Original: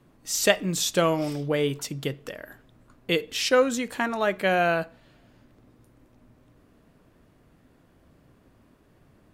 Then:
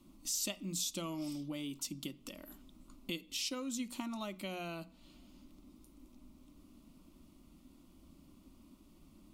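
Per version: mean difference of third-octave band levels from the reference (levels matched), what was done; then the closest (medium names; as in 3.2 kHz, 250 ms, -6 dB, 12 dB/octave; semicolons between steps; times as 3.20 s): 6.0 dB: peaking EQ 730 Hz -14.5 dB 0.92 oct; hum notches 60/120/180/240 Hz; compression 2.5:1, threshold -43 dBFS, peak gain reduction 16.5 dB; static phaser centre 450 Hz, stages 6; trim +3.5 dB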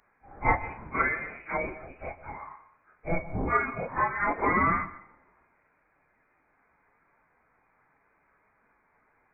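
14.5 dB: phase randomisation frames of 100 ms; Bessel high-pass 1.9 kHz, order 2; plate-style reverb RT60 0.59 s, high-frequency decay 0.95×, pre-delay 110 ms, DRR 15 dB; frequency inversion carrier 2.7 kHz; trim +7.5 dB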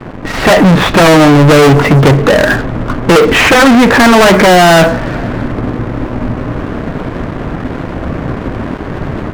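11.0 dB: level rider gain up to 5 dB; in parallel at -3 dB: sine folder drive 16 dB, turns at -3 dBFS; on the sum: low-pass 1.9 kHz 24 dB/octave; waveshaping leveller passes 5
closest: first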